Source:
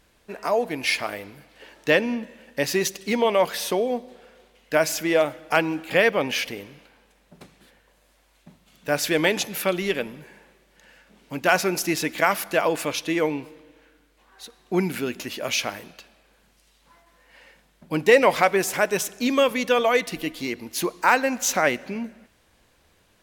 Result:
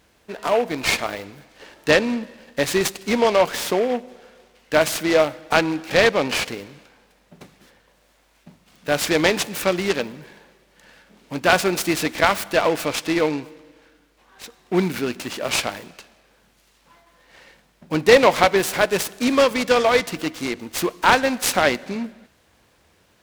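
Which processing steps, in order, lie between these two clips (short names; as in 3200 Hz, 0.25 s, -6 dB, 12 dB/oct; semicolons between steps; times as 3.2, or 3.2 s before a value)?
HPF 56 Hz; noise-modulated delay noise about 1600 Hz, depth 0.042 ms; gain +3 dB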